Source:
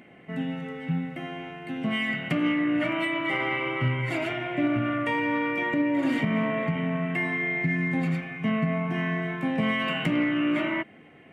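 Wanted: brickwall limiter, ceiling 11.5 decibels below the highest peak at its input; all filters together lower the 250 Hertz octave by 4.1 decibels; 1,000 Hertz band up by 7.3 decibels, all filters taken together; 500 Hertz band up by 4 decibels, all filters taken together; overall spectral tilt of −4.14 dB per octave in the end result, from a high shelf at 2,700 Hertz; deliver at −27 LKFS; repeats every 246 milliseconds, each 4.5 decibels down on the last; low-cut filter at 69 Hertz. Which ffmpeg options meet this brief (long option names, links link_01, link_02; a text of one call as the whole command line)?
ffmpeg -i in.wav -af "highpass=69,equalizer=frequency=250:width_type=o:gain=-7,equalizer=frequency=500:width_type=o:gain=4,equalizer=frequency=1000:width_type=o:gain=8.5,highshelf=frequency=2700:gain=-4,alimiter=limit=-23.5dB:level=0:latency=1,aecho=1:1:246|492|738|984|1230|1476|1722|1968|2214:0.596|0.357|0.214|0.129|0.0772|0.0463|0.0278|0.0167|0.01,volume=3dB" out.wav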